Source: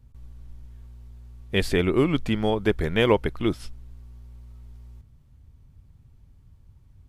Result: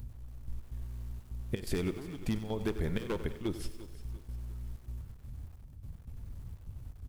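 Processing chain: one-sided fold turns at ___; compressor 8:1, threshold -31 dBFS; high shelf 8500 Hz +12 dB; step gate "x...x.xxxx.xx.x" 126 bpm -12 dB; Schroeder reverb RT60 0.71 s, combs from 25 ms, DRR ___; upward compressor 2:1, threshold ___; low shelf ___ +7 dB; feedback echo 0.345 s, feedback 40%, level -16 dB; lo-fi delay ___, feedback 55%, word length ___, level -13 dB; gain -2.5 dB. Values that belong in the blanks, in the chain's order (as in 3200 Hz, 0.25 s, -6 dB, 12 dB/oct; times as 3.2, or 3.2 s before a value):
-14.5 dBFS, 16 dB, -39 dBFS, 360 Hz, 94 ms, 8-bit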